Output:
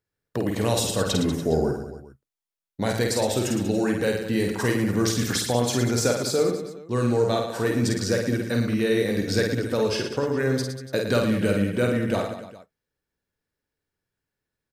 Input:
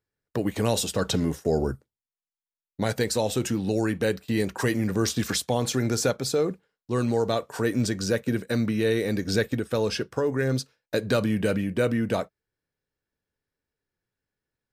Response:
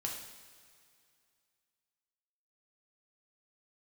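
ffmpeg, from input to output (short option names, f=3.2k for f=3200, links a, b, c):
-af "aecho=1:1:50|112.5|190.6|288.3|410.4:0.631|0.398|0.251|0.158|0.1"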